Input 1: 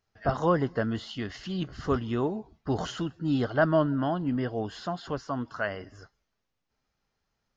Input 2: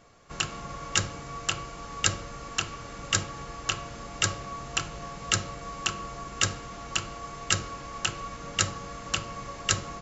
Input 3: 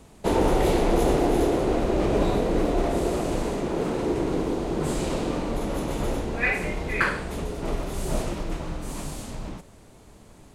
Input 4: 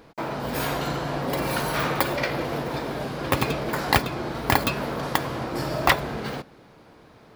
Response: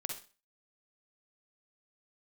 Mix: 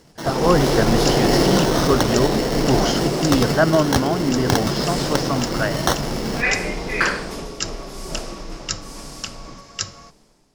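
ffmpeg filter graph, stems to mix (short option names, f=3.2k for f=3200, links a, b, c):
-filter_complex "[0:a]volume=1.5dB[a];[1:a]adelay=100,volume=-14.5dB[b];[2:a]equalizer=f=81:t=o:w=0.8:g=-14.5,volume=-9dB,afade=t=out:st=7.25:d=0.34:silence=0.446684,asplit=2[c][d];[d]volume=-3.5dB[e];[3:a]lowpass=f=2.1k:p=1,equalizer=f=180:w=1:g=7,acrusher=samples=18:mix=1:aa=0.000001,volume=-5dB[f];[4:a]atrim=start_sample=2205[g];[e][g]afir=irnorm=-1:irlink=0[h];[a][b][c][f][h]amix=inputs=5:normalize=0,equalizer=f=5.2k:t=o:w=0.42:g=12.5,dynaudnorm=f=110:g=7:m=9.5dB"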